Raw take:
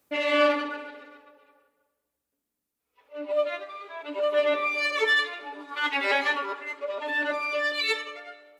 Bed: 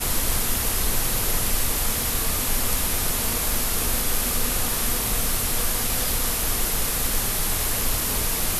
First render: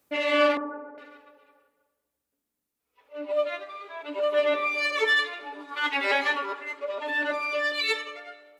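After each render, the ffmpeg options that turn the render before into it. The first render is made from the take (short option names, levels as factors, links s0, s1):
-filter_complex "[0:a]asettb=1/sr,asplit=3[s0][s1][s2];[s0]atrim=end=0.574[s3];[s1]atrim=start=0.57:end=0.98,asetpts=PTS-STARTPTS,afade=t=in:d=0.004:c=qsin,afade=t=out:st=0.406:d=0.004:c=qsin,lowpass=f=1200:w=0.5412,lowpass=f=1200:w=1.3066[s4];[s2]atrim=start=0.976[s5];[s3][s4]acrossfade=d=0.004:c1=hsin:c2=qsin[s6];[s6][s5]acrossfade=d=0.004:c1=qsin:c2=hsin,asettb=1/sr,asplit=3[s7][s8][s9];[s7]atrim=end=3.234[s10];[s8]atrim=start=3.23:end=3.67,asetpts=PTS-STARTPTS,afade=t=in:d=0.004:c=qsin,afade=t=out:st=0.436:d=0.004:c=qsin,asubboost=boost=11:cutoff=200[s11];[s9]atrim=start=3.666[s12];[s10][s11]acrossfade=d=0.004:c1=hsin:c2=qsin[s13];[s13][s12]acrossfade=d=0.004:c1=qsin:c2=hsin"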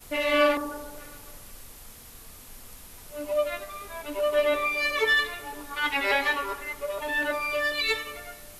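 -filter_complex "[1:a]volume=0.0708[s0];[0:a][s0]amix=inputs=2:normalize=0"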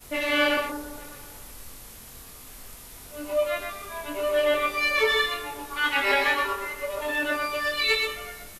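-filter_complex "[0:a]asplit=2[s0][s1];[s1]adelay=23,volume=0.631[s2];[s0][s2]amix=inputs=2:normalize=0,aecho=1:1:124:0.562"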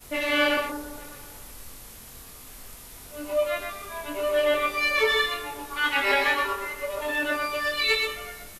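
-af anull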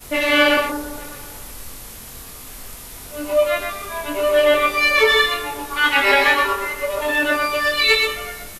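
-af "volume=2.51,alimiter=limit=0.708:level=0:latency=1"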